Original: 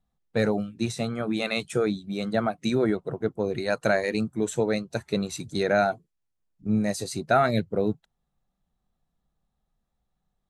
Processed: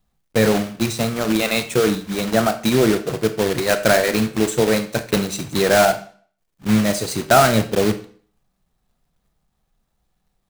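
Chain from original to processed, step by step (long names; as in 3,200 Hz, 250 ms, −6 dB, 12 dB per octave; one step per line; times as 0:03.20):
one scale factor per block 3 bits
convolution reverb RT60 0.45 s, pre-delay 26 ms, DRR 9 dB
level +7 dB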